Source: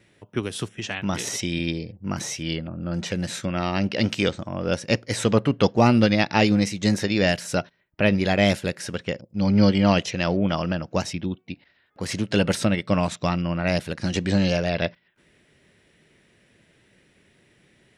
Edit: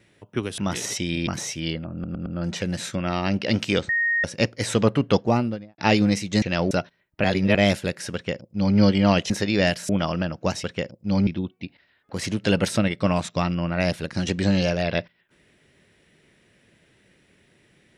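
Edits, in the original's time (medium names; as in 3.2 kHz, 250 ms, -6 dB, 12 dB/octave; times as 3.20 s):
0.58–1.01 s: delete
1.70–2.10 s: delete
2.76 s: stutter 0.11 s, 4 plays
4.39–4.74 s: bleep 1.86 kHz -19 dBFS
5.56–6.28 s: studio fade out
6.92–7.51 s: swap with 10.10–10.39 s
8.04–8.35 s: reverse
8.94–9.57 s: copy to 11.14 s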